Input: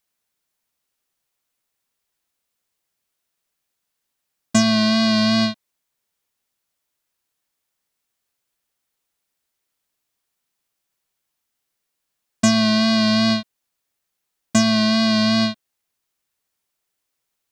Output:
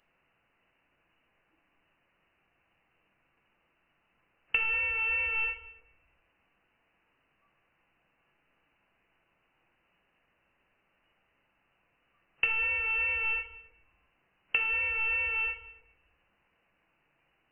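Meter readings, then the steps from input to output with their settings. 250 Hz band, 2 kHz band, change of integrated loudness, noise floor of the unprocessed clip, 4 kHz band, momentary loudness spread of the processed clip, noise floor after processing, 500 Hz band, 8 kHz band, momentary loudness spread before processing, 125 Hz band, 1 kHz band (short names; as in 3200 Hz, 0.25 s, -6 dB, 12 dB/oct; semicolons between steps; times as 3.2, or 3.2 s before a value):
under -40 dB, -1.0 dB, -10.5 dB, -79 dBFS, -24.0 dB, 6 LU, -75 dBFS, -23.5 dB, under -40 dB, 5 LU, under -25 dB, -15.5 dB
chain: flipped gate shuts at -15 dBFS, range -25 dB; spectral noise reduction 12 dB; bell 210 Hz +4.5 dB 0.77 oct; power-law curve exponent 0.7; inverted band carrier 2900 Hz; shoebox room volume 310 m³, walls mixed, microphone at 0.72 m; gain +1.5 dB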